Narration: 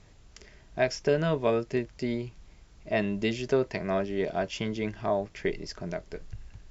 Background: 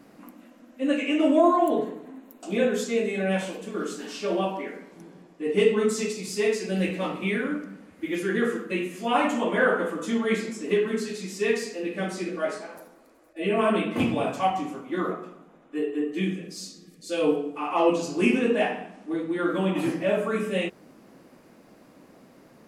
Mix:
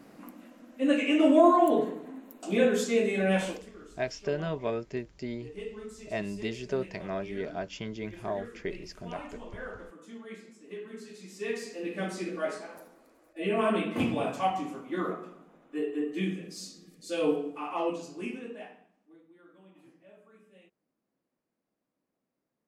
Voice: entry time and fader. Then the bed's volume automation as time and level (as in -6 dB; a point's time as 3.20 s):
3.20 s, -6.0 dB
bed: 3.51 s -0.5 dB
3.77 s -19.5 dB
10.67 s -19.5 dB
11.92 s -4 dB
17.47 s -4 dB
19.43 s -32 dB